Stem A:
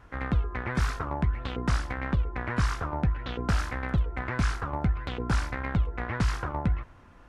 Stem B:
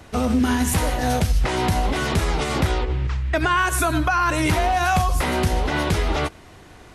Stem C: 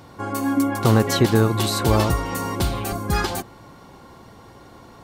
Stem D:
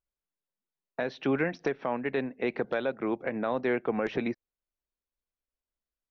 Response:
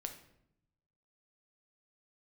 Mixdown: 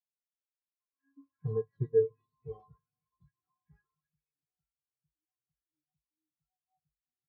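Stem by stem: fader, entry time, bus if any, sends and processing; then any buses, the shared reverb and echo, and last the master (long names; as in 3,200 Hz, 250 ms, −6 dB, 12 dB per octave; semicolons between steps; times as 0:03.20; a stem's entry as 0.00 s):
−10.5 dB, 1.10 s, bus A, no send, no processing
−8.5 dB, 1.80 s, bus A, no send, formant resonators in series u
−1.0 dB, 0.60 s, no bus, send −4.5 dB, low-pass filter 4,900 Hz; expander for the loud parts 2.5 to 1, over −25 dBFS
−3.5 dB, 0.00 s, no bus, no send, Chebyshev band-pass filter 950–2,600 Hz, order 5
bus A: 0.0 dB, downward compressor 2.5 to 1, threshold −41 dBFS, peak gain reduction 8.5 dB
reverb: on, RT60 0.75 s, pre-delay 6 ms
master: high-shelf EQ 4,300 Hz +5 dB; tuned comb filter 150 Hz, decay 0.17 s, harmonics odd, mix 90%; every bin expanded away from the loudest bin 2.5 to 1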